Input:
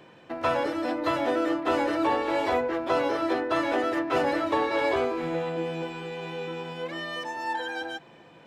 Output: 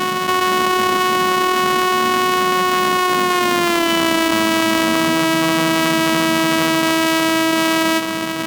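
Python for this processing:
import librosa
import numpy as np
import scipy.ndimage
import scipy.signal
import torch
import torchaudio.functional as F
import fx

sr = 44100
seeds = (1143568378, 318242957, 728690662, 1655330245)

p1 = np.r_[np.sort(x[:len(x) // 128 * 128].reshape(-1, 128), axis=1).ravel(), x[len(x) // 128 * 128:]]
p2 = fx.doppler_pass(p1, sr, speed_mps=22, closest_m=8.2, pass_at_s=3.69)
p3 = fx.low_shelf(p2, sr, hz=140.0, db=-11.5)
p4 = fx.small_body(p3, sr, hz=(230.0, 1100.0, 3000.0), ring_ms=45, db=10)
p5 = fx.rider(p4, sr, range_db=5, speed_s=2.0)
p6 = p4 + (p5 * 10.0 ** (3.0 / 20.0))
p7 = fx.peak_eq(p6, sr, hz=2300.0, db=4.5, octaves=1.7)
p8 = fx.env_flatten(p7, sr, amount_pct=100)
y = p8 * 10.0 ** (-1.0 / 20.0)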